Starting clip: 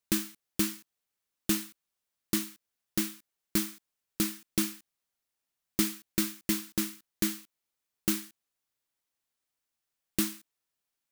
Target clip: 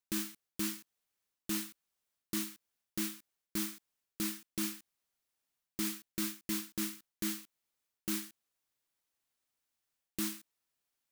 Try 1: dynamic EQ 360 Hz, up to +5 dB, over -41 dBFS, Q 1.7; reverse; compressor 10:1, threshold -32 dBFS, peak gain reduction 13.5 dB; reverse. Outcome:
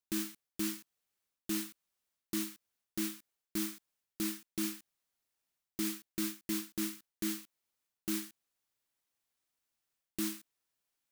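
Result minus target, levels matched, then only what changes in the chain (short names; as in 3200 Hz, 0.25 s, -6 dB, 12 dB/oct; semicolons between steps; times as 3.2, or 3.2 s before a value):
500 Hz band +3.0 dB
change: dynamic EQ 920 Hz, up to +5 dB, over -41 dBFS, Q 1.7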